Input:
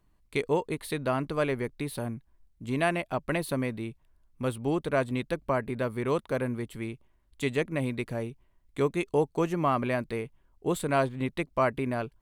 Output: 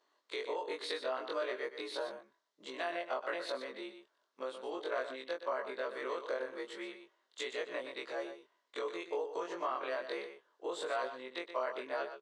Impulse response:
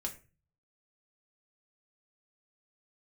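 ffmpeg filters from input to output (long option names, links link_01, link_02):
-filter_complex "[0:a]afftfilt=real='re':imag='-im':win_size=2048:overlap=0.75,alimiter=level_in=3.5dB:limit=-24dB:level=0:latency=1:release=144,volume=-3.5dB,acompressor=threshold=-44dB:ratio=2,highpass=frequency=460:width=0.5412,highpass=frequency=460:width=1.3066,equalizer=frequency=770:width_type=q:width=4:gain=-5,equalizer=frequency=2400:width_type=q:width=4:gain=-8,equalizer=frequency=3800:width_type=q:width=4:gain=3,lowpass=frequency=6400:width=0.5412,lowpass=frequency=6400:width=1.3066,asplit=2[link_01][link_02];[link_02]aecho=0:1:122:0.316[link_03];[link_01][link_03]amix=inputs=2:normalize=0,volume=10dB"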